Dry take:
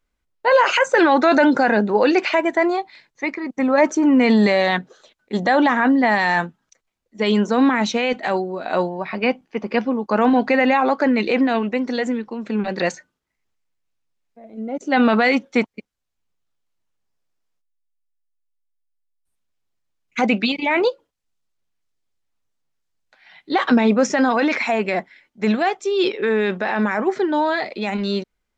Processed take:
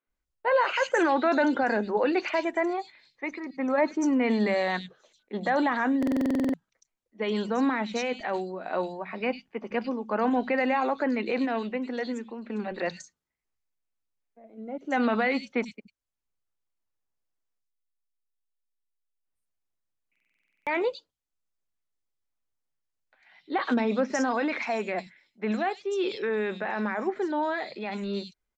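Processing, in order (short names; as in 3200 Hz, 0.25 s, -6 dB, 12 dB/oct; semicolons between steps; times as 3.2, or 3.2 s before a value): three bands offset in time mids, lows, highs 70/100 ms, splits 170/3500 Hz; stuck buffer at 5.98/20.11, samples 2048, times 11; gain -8.5 dB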